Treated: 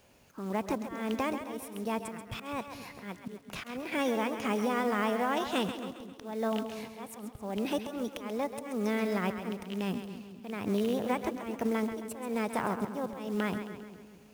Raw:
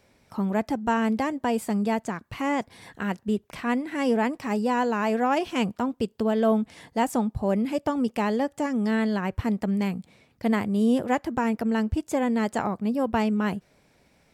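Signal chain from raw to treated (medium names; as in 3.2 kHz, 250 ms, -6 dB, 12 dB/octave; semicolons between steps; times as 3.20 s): rattle on loud lows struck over -24 dBFS, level -21 dBFS; compression 20:1, threshold -25 dBFS, peak gain reduction 9.5 dB; formant shift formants +3 st; slow attack 275 ms; companded quantiser 6-bit; two-band feedback delay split 450 Hz, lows 215 ms, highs 134 ms, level -9 dB; trim -1 dB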